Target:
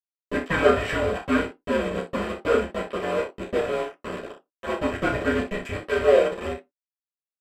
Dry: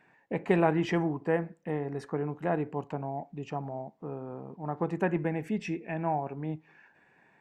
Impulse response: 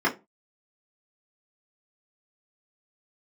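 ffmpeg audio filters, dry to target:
-filter_complex "[0:a]equalizer=frequency=680:width=0.46:gain=4.5,bandreject=frequency=48.47:width_type=h:width=4,bandreject=frequency=96.94:width_type=h:width=4,bandreject=frequency=145.41:width_type=h:width=4,acrossover=split=140|1100[link_01][link_02][link_03];[link_02]asoftclip=type=tanh:threshold=-26dB[link_04];[link_01][link_04][link_03]amix=inputs=3:normalize=0,afreqshift=-230,aphaser=in_gain=1:out_gain=1:delay=1.7:decay=0.2:speed=0.57:type=triangular,aeval=exprs='val(0)*gte(abs(val(0)),0.0299)':channel_layout=same,aecho=1:1:32|60:0.473|0.282[link_05];[1:a]atrim=start_sample=2205,asetrate=66150,aresample=44100[link_06];[link_05][link_06]afir=irnorm=-1:irlink=0,aresample=32000,aresample=44100,volume=-4dB"

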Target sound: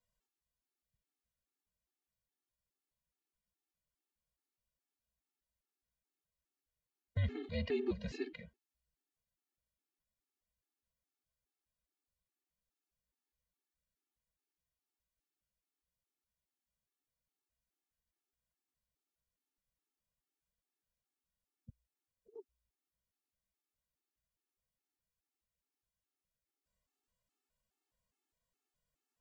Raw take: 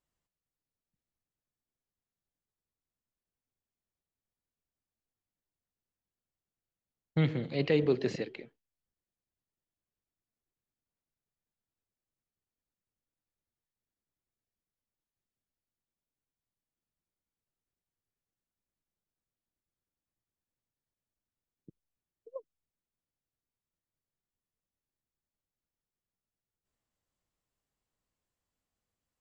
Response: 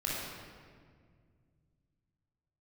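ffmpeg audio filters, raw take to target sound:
-af "alimiter=level_in=1dB:limit=-24dB:level=0:latency=1:release=470,volume=-1dB,afreqshift=-60,afftfilt=real='re*gt(sin(2*PI*2.4*pts/sr)*(1-2*mod(floor(b*sr/1024/230),2)),0)':imag='im*gt(sin(2*PI*2.4*pts/sr)*(1-2*mod(floor(b*sr/1024/230),2)),0)':win_size=1024:overlap=0.75,volume=1.5dB"

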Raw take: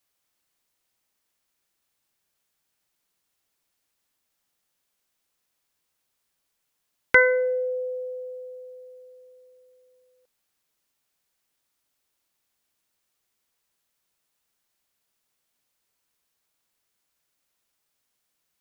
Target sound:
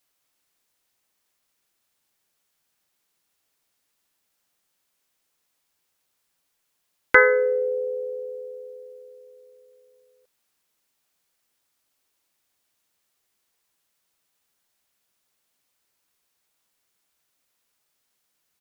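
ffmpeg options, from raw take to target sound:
ffmpeg -i in.wav -filter_complex "[0:a]lowshelf=frequency=140:gain=-3.5,asplit=2[link_01][link_02];[link_02]asetrate=37084,aresample=44100,atempo=1.18921,volume=-7dB[link_03];[link_01][link_03]amix=inputs=2:normalize=0,acrossover=split=2700[link_04][link_05];[link_05]acompressor=threshold=-35dB:ratio=4:attack=1:release=60[link_06];[link_04][link_06]amix=inputs=2:normalize=0,volume=2dB" out.wav

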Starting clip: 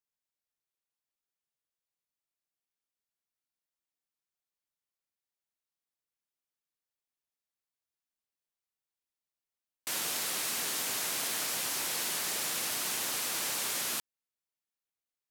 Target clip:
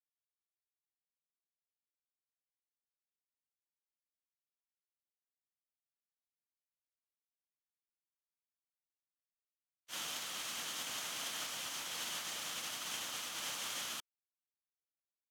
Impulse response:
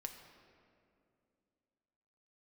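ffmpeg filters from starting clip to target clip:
-filter_complex "[0:a]equalizer=frequency=400:width_type=o:width=0.33:gain=-8,equalizer=frequency=1250:width_type=o:width=0.33:gain=4,equalizer=frequency=3150:width_type=o:width=0.33:gain=8,equalizer=frequency=6300:width_type=o:width=0.33:gain=5,agate=range=-59dB:threshold=-30dB:ratio=16:detection=peak,asplit=2[link_01][link_02];[link_02]highpass=frequency=720:poles=1,volume=11dB,asoftclip=type=tanh:threshold=-56dB[link_03];[link_01][link_03]amix=inputs=2:normalize=0,lowpass=frequency=5300:poles=1,volume=-6dB,volume=4.5dB"

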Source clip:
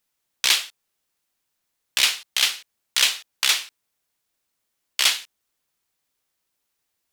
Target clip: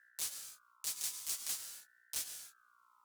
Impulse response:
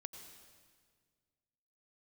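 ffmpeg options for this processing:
-filter_complex "[0:a]areverse,acompressor=threshold=-32dB:ratio=6,areverse,asetrate=103194,aresample=44100,aeval=exprs='val(0)+0.000891*(sin(2*PI*60*n/s)+sin(2*PI*2*60*n/s)/2+sin(2*PI*3*60*n/s)/3+sin(2*PI*4*60*n/s)/4+sin(2*PI*5*60*n/s)/5)':channel_layout=same[link_01];[1:a]atrim=start_sample=2205,afade=type=out:start_time=0.34:duration=0.01,atrim=end_sample=15435[link_02];[link_01][link_02]afir=irnorm=-1:irlink=0,aeval=exprs='val(0)*sin(2*PI*1400*n/s+1400*0.2/0.48*sin(2*PI*0.48*n/s))':channel_layout=same,volume=4dB"

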